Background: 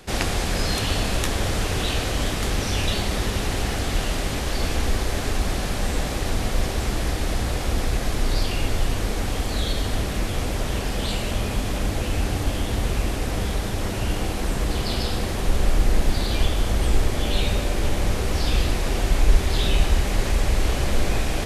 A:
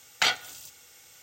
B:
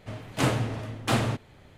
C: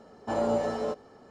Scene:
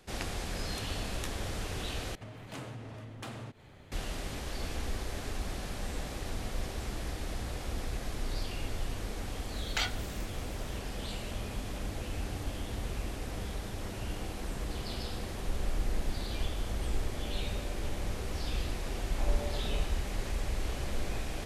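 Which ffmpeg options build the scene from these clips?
ffmpeg -i bed.wav -i cue0.wav -i cue1.wav -i cue2.wav -filter_complex "[0:a]volume=-13dB[link_01];[2:a]acompressor=threshold=-41dB:ratio=4:attack=4.5:release=179:knee=1:detection=peak[link_02];[1:a]acontrast=65[link_03];[link_01]asplit=2[link_04][link_05];[link_04]atrim=end=2.154[link_06];[link_02]atrim=end=1.77,asetpts=PTS-STARTPTS,volume=-1.5dB[link_07];[link_05]atrim=start=3.916[link_08];[link_03]atrim=end=1.22,asetpts=PTS-STARTPTS,volume=-15dB,afade=type=in:duration=0.004:curve=hsin,afade=type=out:start_time=1.216:duration=0.004:curve=hsin,adelay=9550[link_09];[3:a]atrim=end=1.3,asetpts=PTS-STARTPTS,volume=-14dB,afade=type=in:duration=0.004:curve=hsin,afade=type=out:start_time=1.296:duration=0.004:curve=hsin,adelay=18900[link_10];[link_06][link_07]acrossfade=duration=0.004:curve1=hsin:curve2=hsin[link_11];[link_11][link_08]acrossfade=duration=0.004:curve1=hsin:curve2=hsin[link_12];[link_12][link_09][link_10]amix=inputs=3:normalize=0" out.wav

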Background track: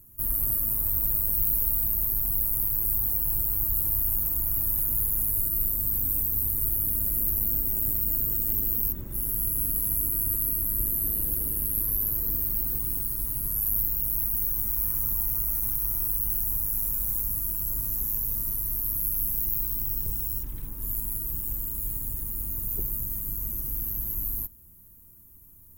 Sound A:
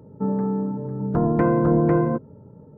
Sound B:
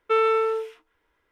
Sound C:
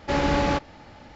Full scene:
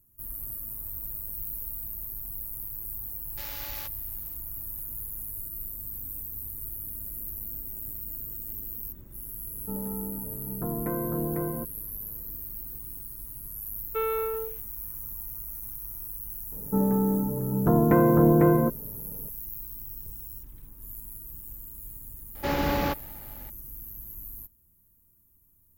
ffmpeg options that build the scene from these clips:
ffmpeg -i bed.wav -i cue0.wav -i cue1.wav -i cue2.wav -filter_complex "[3:a]asplit=2[link_01][link_02];[1:a]asplit=2[link_03][link_04];[0:a]volume=-11dB[link_05];[link_01]aderivative[link_06];[2:a]equalizer=frequency=530:width=0.31:gain=7[link_07];[link_06]atrim=end=1.15,asetpts=PTS-STARTPTS,volume=-4dB,afade=type=in:duration=0.1,afade=type=out:start_time=1.05:duration=0.1,adelay=145089S[link_08];[link_03]atrim=end=2.77,asetpts=PTS-STARTPTS,volume=-12dB,afade=type=in:duration=0.004:curve=hsin,afade=type=out:start_time=2.766:duration=0.004:curve=hsin,adelay=9470[link_09];[link_07]atrim=end=1.31,asetpts=PTS-STARTPTS,volume=-14.5dB,afade=type=in:duration=0.004:curve=hsin,afade=type=out:start_time=1.306:duration=0.004:curve=hsin,adelay=13850[link_10];[link_04]atrim=end=2.77,asetpts=PTS-STARTPTS,volume=-0.5dB,afade=type=in:duration=0.004:curve=hsin,afade=type=out:start_time=2.766:duration=0.004:curve=hsin,adelay=728532S[link_11];[link_02]atrim=end=1.15,asetpts=PTS-STARTPTS,volume=-4dB,afade=type=in:duration=0.004:curve=hsin,afade=type=out:start_time=1.146:duration=0.004:curve=hsin,adelay=22350[link_12];[link_05][link_08][link_09][link_10][link_11][link_12]amix=inputs=6:normalize=0" out.wav

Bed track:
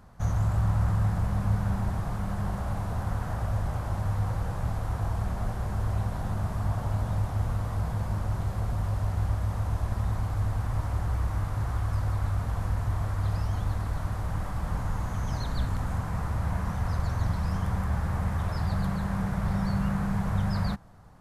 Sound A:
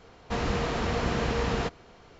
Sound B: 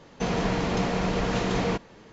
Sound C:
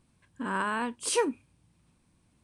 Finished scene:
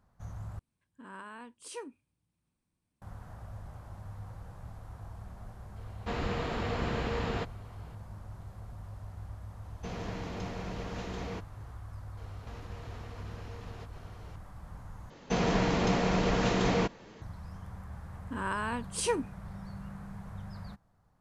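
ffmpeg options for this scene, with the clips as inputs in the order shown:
ffmpeg -i bed.wav -i cue0.wav -i cue1.wav -i cue2.wav -filter_complex "[3:a]asplit=2[link_01][link_02];[1:a]asplit=2[link_03][link_04];[2:a]asplit=2[link_05][link_06];[0:a]volume=-16dB[link_07];[link_03]equalizer=frequency=5900:width_type=o:width=0.44:gain=-8.5[link_08];[link_04]acompressor=threshold=-44dB:ratio=6:attack=3.2:release=140:knee=1:detection=peak[link_09];[link_07]asplit=3[link_10][link_11][link_12];[link_10]atrim=end=0.594[link_13];[link_01]atrim=end=2.43,asetpts=PTS-STARTPTS,volume=-16dB[link_14];[link_11]atrim=start=3.016:end=15.104[link_15];[link_06]atrim=end=2.12,asetpts=PTS-STARTPTS,volume=-1.5dB[link_16];[link_12]atrim=start=17.216[link_17];[link_08]atrim=end=2.19,asetpts=PTS-STARTPTS,volume=-5dB,afade=type=in:duration=0.004:curve=hsin,afade=type=out:start_time=2.186:duration=0.004:curve=hsin,adelay=5760[link_18];[link_05]atrim=end=2.12,asetpts=PTS-STARTPTS,volume=-13.5dB,afade=type=in:duration=0.004:curve=hsin,afade=type=out:start_time=2.116:duration=0.004:curve=hsin,adelay=9630[link_19];[link_09]atrim=end=2.19,asetpts=PTS-STARTPTS,volume=-2.5dB,afade=type=in:duration=0.004:curve=hsin,afade=type=out:start_time=2.186:duration=0.004:curve=hsin,adelay=12170[link_20];[link_02]atrim=end=2.43,asetpts=PTS-STARTPTS,volume=-3.5dB,afade=type=in:duration=0.004:curve=hsin,afade=type=out:start_time=2.426:duration=0.004:curve=hsin,adelay=17910[link_21];[link_13][link_14]acrossfade=duration=0.004:curve1=hsin:curve2=hsin[link_22];[link_22][link_15]acrossfade=duration=0.004:curve1=hsin:curve2=hsin[link_23];[link_23][link_16]acrossfade=duration=0.004:curve1=hsin:curve2=hsin[link_24];[link_24][link_17]acrossfade=duration=0.004:curve1=hsin:curve2=hsin[link_25];[link_25][link_18][link_19][link_20][link_21]amix=inputs=5:normalize=0" out.wav

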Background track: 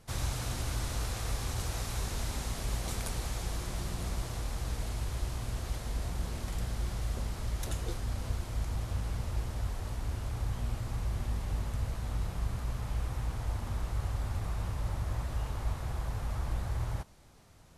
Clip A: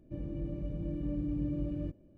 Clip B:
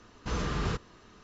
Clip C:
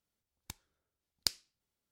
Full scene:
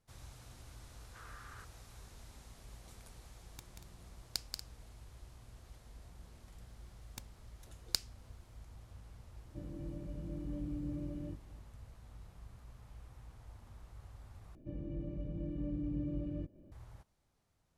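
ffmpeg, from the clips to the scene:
ffmpeg -i bed.wav -i cue0.wav -i cue1.wav -i cue2.wav -filter_complex "[3:a]asplit=2[link_01][link_02];[1:a]asplit=2[link_03][link_04];[0:a]volume=-19.5dB[link_05];[2:a]bandpass=frequency=1500:width_type=q:width=2.9:csg=0[link_06];[link_01]aecho=1:1:183.7|236.2:0.562|0.282[link_07];[link_04]acompressor=mode=upward:threshold=-46dB:ratio=2.5:attack=3.2:release=140:knee=2.83:detection=peak[link_08];[link_05]asplit=2[link_09][link_10];[link_09]atrim=end=14.554[link_11];[link_08]atrim=end=2.17,asetpts=PTS-STARTPTS,volume=-4dB[link_12];[link_10]atrim=start=16.716[link_13];[link_06]atrim=end=1.23,asetpts=PTS-STARTPTS,volume=-12dB,afade=type=in:duration=0.004:curve=hsin,afade=type=out:start_time=1.226:duration=0.004:curve=hsin,adelay=880[link_14];[link_07]atrim=end=1.91,asetpts=PTS-STARTPTS,volume=-7.5dB,afade=type=in:duration=0.004:curve=hsin,afade=type=out:start_time=1.906:duration=0.004:curve=hsin,adelay=136269S[link_15];[link_02]atrim=end=1.91,asetpts=PTS-STARTPTS,volume=-2.5dB,afade=type=in:duration=0.004:curve=hsin,afade=type=out:start_time=1.906:duration=0.004:curve=hsin,adelay=6680[link_16];[link_03]atrim=end=2.17,asetpts=PTS-STARTPTS,volume=-6.5dB,afade=type=in:duration=0.004:curve=hsin,afade=type=out:start_time=2.166:duration=0.004:curve=hsin,adelay=9440[link_17];[link_11][link_12]acrossfade=duration=0.004:curve1=hsin:curve2=hsin[link_18];[link_18][link_13]acrossfade=duration=0.004:curve1=hsin:curve2=hsin[link_19];[link_19][link_14][link_15][link_16][link_17]amix=inputs=5:normalize=0" out.wav

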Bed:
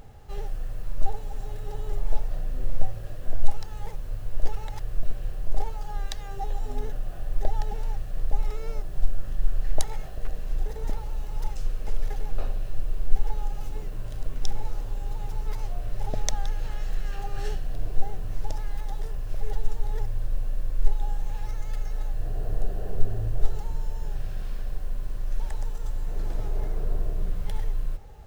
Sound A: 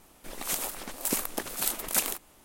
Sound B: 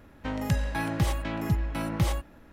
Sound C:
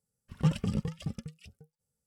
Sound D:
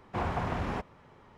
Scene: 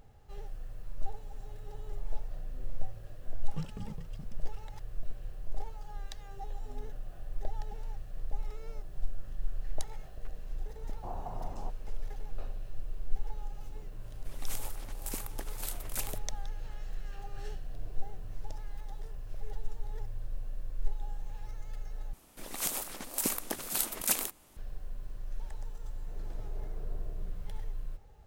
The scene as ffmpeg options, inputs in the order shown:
ffmpeg -i bed.wav -i cue0.wav -i cue1.wav -i cue2.wav -i cue3.wav -filter_complex "[1:a]asplit=2[link_01][link_02];[0:a]volume=-10.5dB[link_03];[4:a]lowpass=frequency=790:width_type=q:width=2.7[link_04];[link_02]bass=frequency=250:gain=3,treble=frequency=4000:gain=2[link_05];[link_03]asplit=2[link_06][link_07];[link_06]atrim=end=22.134[link_08];[link_05]atrim=end=2.44,asetpts=PTS-STARTPTS,volume=-4dB[link_09];[link_07]atrim=start=24.566[link_10];[3:a]atrim=end=2.06,asetpts=PTS-STARTPTS,volume=-12.5dB,afade=type=in:duration=0.004:curve=hsin,afade=type=out:start_time=2.056:duration=0.004:curve=hsin,adelay=138033S[link_11];[link_04]atrim=end=1.37,asetpts=PTS-STARTPTS,volume=-15dB,afade=type=in:duration=0.004:curve=hsin,afade=type=out:start_time=1.366:duration=0.004:curve=hsin,adelay=10890[link_12];[link_01]atrim=end=2.44,asetpts=PTS-STARTPTS,volume=-11dB,afade=type=in:duration=0.004:curve=hsin,afade=type=out:start_time=2.436:duration=0.004:curve=hsin,adelay=14010[link_13];[link_08][link_09]acrossfade=duration=0.004:curve1=hsin:curve2=hsin[link_14];[link_14][link_10]acrossfade=duration=0.004:curve1=hsin:curve2=hsin[link_15];[link_15][link_11][link_12][link_13]amix=inputs=4:normalize=0" out.wav

